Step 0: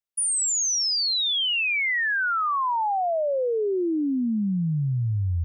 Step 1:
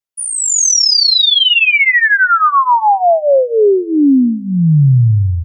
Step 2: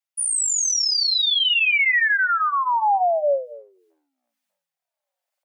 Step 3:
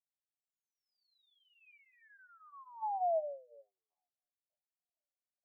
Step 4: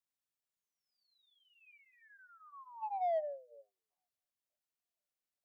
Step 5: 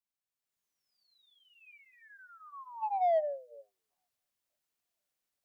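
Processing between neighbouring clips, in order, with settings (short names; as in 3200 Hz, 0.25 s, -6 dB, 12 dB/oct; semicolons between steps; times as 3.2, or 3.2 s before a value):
comb 7.3 ms, depth 81%; echo 0.25 s -22.5 dB; AGC gain up to 12 dB
dynamic EQ 1200 Hz, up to -4 dB, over -25 dBFS, Q 1.3; limiter -13.5 dBFS, peak gain reduction 9.5 dB; rippled Chebyshev high-pass 550 Hz, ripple 3 dB
wah 1.1 Hz 390–1000 Hz, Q 6.3; vowel filter a; air absorption 160 m; gain -2.5 dB
notch 830 Hz, Q 19; in parallel at -6 dB: soft clip -36 dBFS, distortion -10 dB; on the sum: gain -3 dB
AGC gain up to 11 dB; gain -5 dB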